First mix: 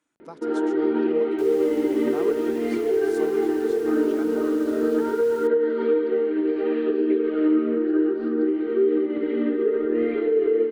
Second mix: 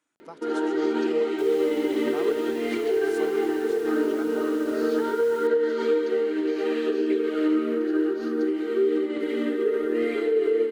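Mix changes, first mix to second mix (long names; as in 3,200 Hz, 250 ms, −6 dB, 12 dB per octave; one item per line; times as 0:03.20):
first sound: remove high-frequency loss of the air 380 metres
master: add low-shelf EQ 400 Hz −6 dB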